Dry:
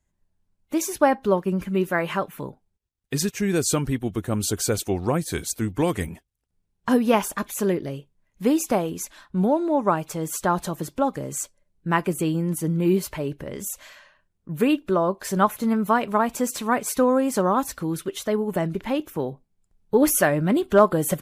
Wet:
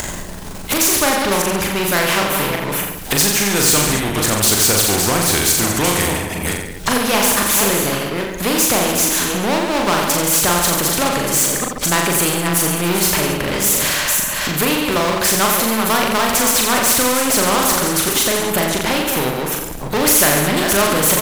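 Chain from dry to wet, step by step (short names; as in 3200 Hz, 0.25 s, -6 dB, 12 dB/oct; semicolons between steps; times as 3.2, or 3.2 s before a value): reverse delay 0.284 s, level -11.5 dB; power-law curve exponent 0.7; upward compressor, threshold -20 dBFS; on a send: reverse bouncing-ball echo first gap 40 ms, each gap 1.15×, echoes 5; on the sum: spectral compressor 2:1; gain -1 dB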